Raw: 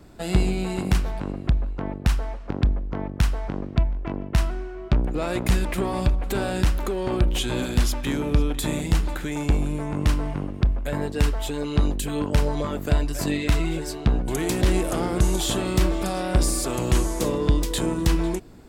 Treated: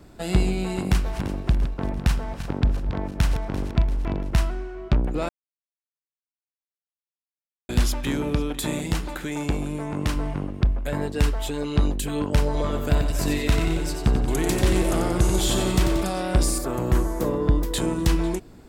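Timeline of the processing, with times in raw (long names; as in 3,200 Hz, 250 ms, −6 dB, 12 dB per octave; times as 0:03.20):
0:00.89–0:04.35: feedback delay that plays each chunk backwards 171 ms, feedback 71%, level −10 dB
0:05.29–0:07.69: silence
0:08.31–0:10.16: low-shelf EQ 71 Hz −11 dB
0:12.45–0:16.01: repeating echo 91 ms, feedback 57%, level −6.5 dB
0:16.58–0:17.74: flat-topped bell 4,900 Hz −10 dB 2.4 octaves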